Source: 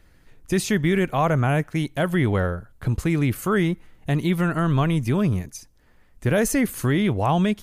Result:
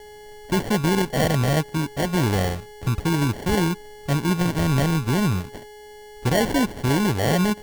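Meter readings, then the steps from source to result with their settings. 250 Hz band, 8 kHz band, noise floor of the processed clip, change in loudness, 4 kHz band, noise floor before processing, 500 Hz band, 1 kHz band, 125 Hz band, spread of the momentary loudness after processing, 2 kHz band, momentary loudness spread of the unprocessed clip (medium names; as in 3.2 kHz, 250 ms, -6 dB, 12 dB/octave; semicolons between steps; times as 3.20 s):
0.0 dB, +1.5 dB, -43 dBFS, 0.0 dB, +5.5 dB, -56 dBFS, 0.0 dB, +0.5 dB, 0.0 dB, 7 LU, 0.0 dB, 7 LU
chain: whistle 2.1 kHz -40 dBFS; sample-and-hold 35×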